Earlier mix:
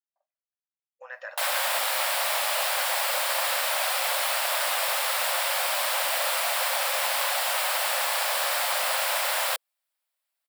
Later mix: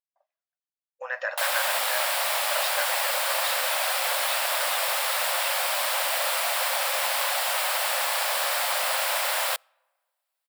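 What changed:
speech +9.0 dB
reverb: on, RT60 1.6 s

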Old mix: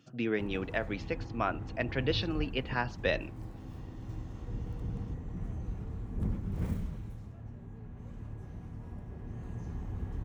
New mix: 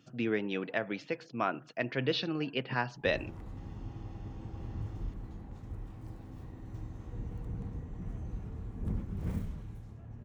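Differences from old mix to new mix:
background: entry +2.65 s
reverb: off

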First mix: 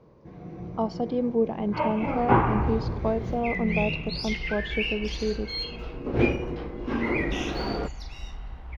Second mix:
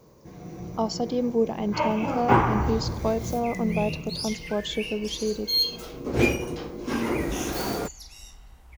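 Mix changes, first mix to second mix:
second sound −11.0 dB
master: remove high-frequency loss of the air 310 metres

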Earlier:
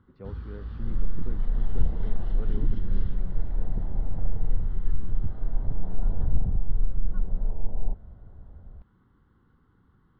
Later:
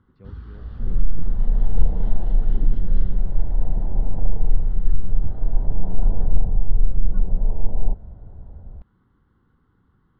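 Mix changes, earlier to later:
speech: add parametric band 720 Hz −9.5 dB 2.7 octaves
second sound +7.0 dB

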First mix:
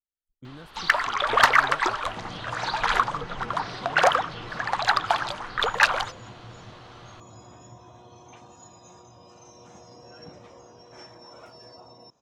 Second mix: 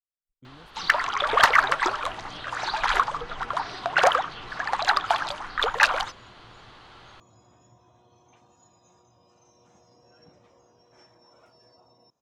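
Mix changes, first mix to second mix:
speech −6.5 dB
second sound −10.5 dB

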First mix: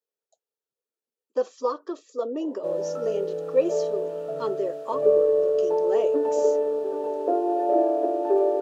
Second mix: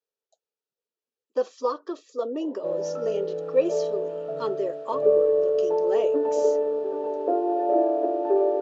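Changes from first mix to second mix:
speech: add high-shelf EQ 3,300 Hz +10.5 dB
master: add high-frequency loss of the air 130 metres

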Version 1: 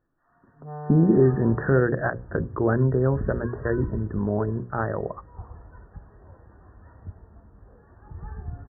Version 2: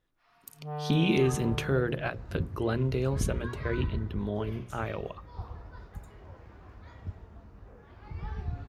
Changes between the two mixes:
speech −7.5 dB
second sound: remove high-frequency loss of the air 270 metres
master: remove linear-phase brick-wall low-pass 1,900 Hz

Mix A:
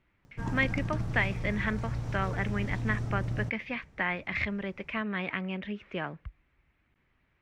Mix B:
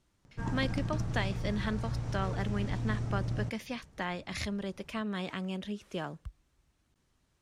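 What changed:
speech: remove low-pass with resonance 2,200 Hz, resonance Q 3.3
master: add Chebyshev low-pass filter 9,600 Hz, order 2

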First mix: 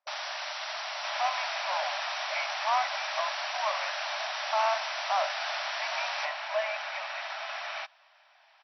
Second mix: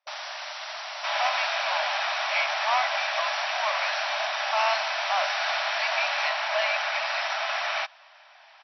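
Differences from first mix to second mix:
speech: remove Gaussian smoothing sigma 4.1 samples
second sound +8.5 dB

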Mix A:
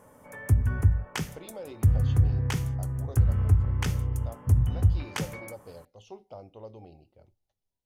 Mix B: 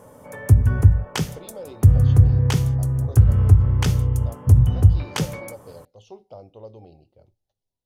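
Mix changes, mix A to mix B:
background +6.0 dB
master: add octave-band graphic EQ 125/500/2,000/4,000 Hz +4/+4/−4/+4 dB

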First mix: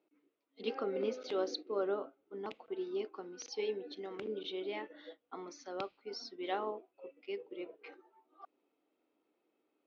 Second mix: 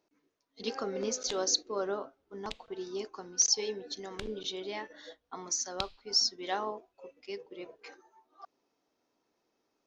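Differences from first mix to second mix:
background: add low-pass with resonance 3,700 Hz, resonance Q 2.7
master: remove loudspeaker in its box 260–3,100 Hz, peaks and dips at 310 Hz +5 dB, 690 Hz −3 dB, 990 Hz −7 dB, 1,700 Hz −8 dB

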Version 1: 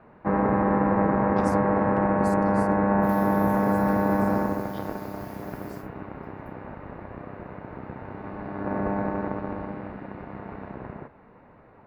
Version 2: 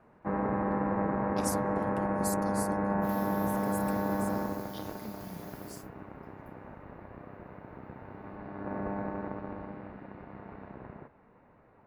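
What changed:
speech: remove resonant band-pass 2,300 Hz, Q 0.96
first sound −8.0 dB

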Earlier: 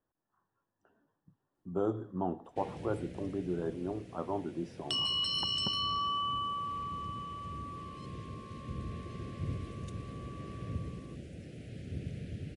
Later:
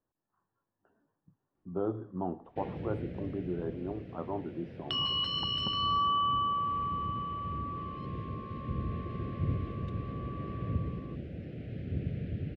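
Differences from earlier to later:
first sound +5.5 dB
second sound +7.5 dB
master: add high-frequency loss of the air 380 metres

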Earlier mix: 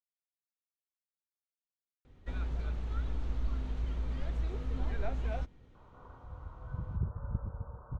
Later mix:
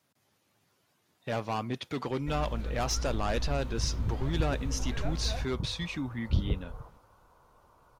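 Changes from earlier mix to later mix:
speech: unmuted
second sound: entry −2.95 s
master: remove high-frequency loss of the air 61 metres

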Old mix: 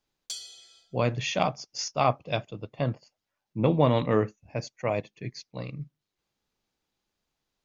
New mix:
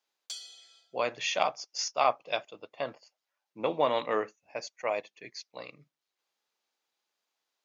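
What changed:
background: add high-shelf EQ 5,000 Hz −7.5 dB
master: add high-pass filter 560 Hz 12 dB per octave

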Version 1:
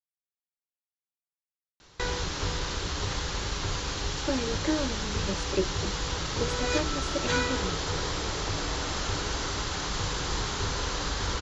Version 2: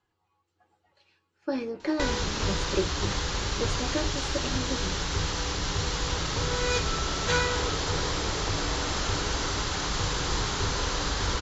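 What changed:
speech: entry −2.80 s
background: send on

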